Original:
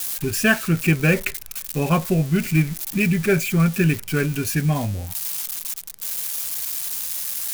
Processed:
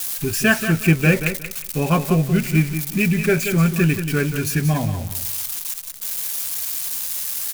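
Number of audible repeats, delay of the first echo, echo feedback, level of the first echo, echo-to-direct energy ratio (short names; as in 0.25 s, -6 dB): 3, 0.181 s, 23%, -9.0 dB, -9.0 dB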